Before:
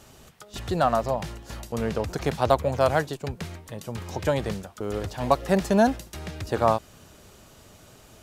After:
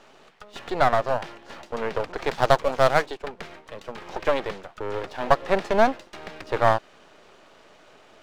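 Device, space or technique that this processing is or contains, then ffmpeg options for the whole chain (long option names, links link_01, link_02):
crystal radio: -filter_complex "[0:a]highpass=380,lowpass=3100,aeval=exprs='if(lt(val(0),0),0.251*val(0),val(0))':channel_layout=same,asettb=1/sr,asplit=3[link_01][link_02][link_03];[link_01]atrim=end=2.124[link_04];[link_02]atrim=start=2.12:end=3.06,asetpts=PTS-STARTPTS,afade=type=in:duration=0.004:curve=qsin,afade=type=out:start_time=0.936:duration=0.004:curve=qsin,adynamicequalizer=threshold=0.00631:dfrequency=3500:dqfactor=0.7:tfrequency=3500:tqfactor=0.7:attack=5:release=100:ratio=0.375:range=3.5:mode=boostabove:tftype=highshelf[link_05];[link_03]atrim=start=3.056[link_06];[link_04][link_05]acrossfade=duration=0.004:curve1=hsin:curve2=qsin[link_07];[link_07][link_06]acrossfade=duration=0.004:curve1=qsin:curve2=hsin,volume=6.5dB"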